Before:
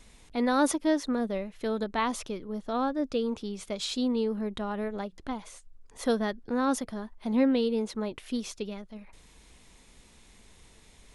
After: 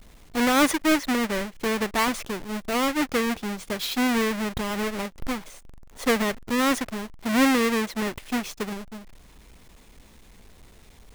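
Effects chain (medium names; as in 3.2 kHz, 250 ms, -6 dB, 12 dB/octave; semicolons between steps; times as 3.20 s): square wave that keeps the level; dynamic bell 2 kHz, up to +6 dB, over -41 dBFS, Q 1.6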